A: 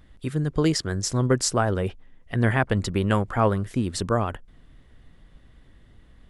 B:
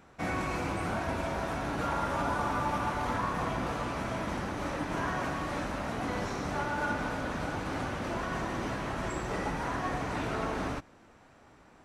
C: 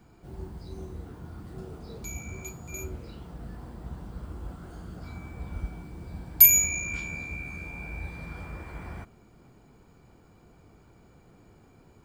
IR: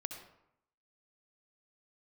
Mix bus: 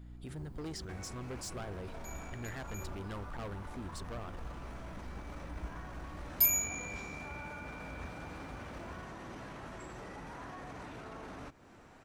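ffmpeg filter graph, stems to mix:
-filter_complex "[0:a]aeval=exprs='val(0)+0.0112*(sin(2*PI*60*n/s)+sin(2*PI*2*60*n/s)/2+sin(2*PI*3*60*n/s)/3+sin(2*PI*4*60*n/s)/4+sin(2*PI*5*60*n/s)/5)':channel_layout=same,asubboost=boost=7.5:cutoff=51,volume=-9.5dB[link_01];[1:a]acompressor=threshold=-44dB:ratio=3,adelay=700,volume=0dB[link_02];[2:a]asoftclip=type=hard:threshold=-10dB,volume=-10.5dB[link_03];[link_01][link_02]amix=inputs=2:normalize=0,asoftclip=type=hard:threshold=-31.5dB,alimiter=level_in=14.5dB:limit=-24dB:level=0:latency=1:release=15,volume=-14.5dB,volume=0dB[link_04];[link_03][link_04]amix=inputs=2:normalize=0"

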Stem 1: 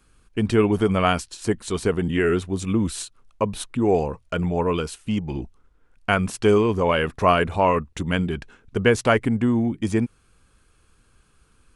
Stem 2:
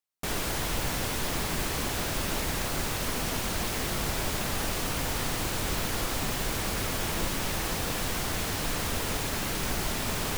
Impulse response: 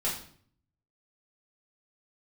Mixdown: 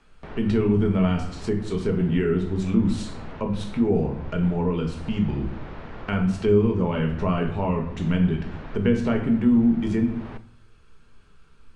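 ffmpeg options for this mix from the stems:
-filter_complex "[0:a]volume=-3.5dB,asplit=2[link_01][link_02];[link_02]volume=-3.5dB[link_03];[1:a]lowpass=1700,acompressor=mode=upward:threshold=-35dB:ratio=2.5,volume=-6.5dB,asplit=2[link_04][link_05];[link_05]volume=-18dB[link_06];[2:a]atrim=start_sample=2205[link_07];[link_03][link_06]amix=inputs=2:normalize=0[link_08];[link_08][link_07]afir=irnorm=-1:irlink=0[link_09];[link_01][link_04][link_09]amix=inputs=3:normalize=0,lowpass=5000,acrossover=split=300[link_10][link_11];[link_11]acompressor=threshold=-38dB:ratio=2[link_12];[link_10][link_12]amix=inputs=2:normalize=0"

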